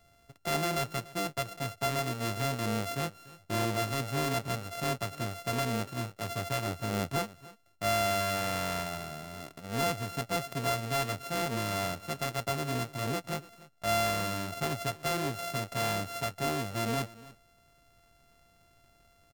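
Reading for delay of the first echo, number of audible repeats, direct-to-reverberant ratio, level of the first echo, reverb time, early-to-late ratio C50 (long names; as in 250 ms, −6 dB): 291 ms, 1, no reverb audible, −19.5 dB, no reverb audible, no reverb audible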